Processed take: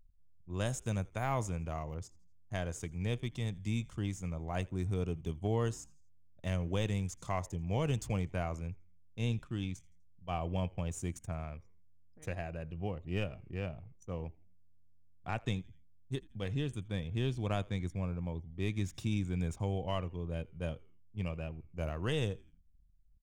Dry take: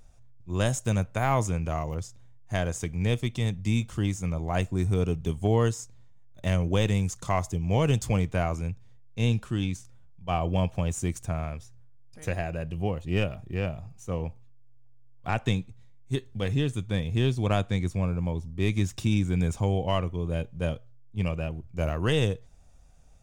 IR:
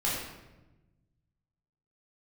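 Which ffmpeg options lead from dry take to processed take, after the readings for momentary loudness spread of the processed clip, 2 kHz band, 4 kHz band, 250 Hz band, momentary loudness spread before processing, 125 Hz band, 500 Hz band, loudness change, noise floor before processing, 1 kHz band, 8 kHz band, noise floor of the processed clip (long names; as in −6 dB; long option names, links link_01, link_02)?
10 LU, −9.0 dB, −9.0 dB, −9.0 dB, 9 LU, −9.0 dB, −9.0 dB, −9.0 dB, −49 dBFS, −9.0 dB, −9.0 dB, −59 dBFS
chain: -filter_complex "[0:a]anlmdn=0.0398,asplit=4[link_01][link_02][link_03][link_04];[link_02]adelay=83,afreqshift=-87,volume=-24dB[link_05];[link_03]adelay=166,afreqshift=-174,volume=-31.5dB[link_06];[link_04]adelay=249,afreqshift=-261,volume=-39.1dB[link_07];[link_01][link_05][link_06][link_07]amix=inputs=4:normalize=0,volume=-9dB"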